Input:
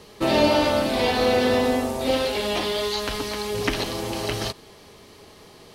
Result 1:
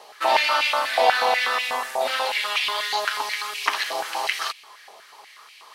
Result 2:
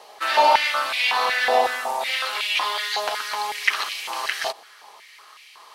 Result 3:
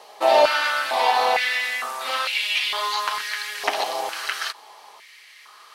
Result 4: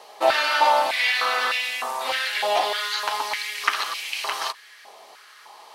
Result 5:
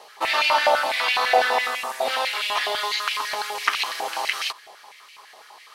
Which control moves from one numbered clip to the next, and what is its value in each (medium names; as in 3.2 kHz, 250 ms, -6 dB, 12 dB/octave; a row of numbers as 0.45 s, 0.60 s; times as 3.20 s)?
step-sequenced high-pass, rate: 8.2 Hz, 5.4 Hz, 2.2 Hz, 3.3 Hz, 12 Hz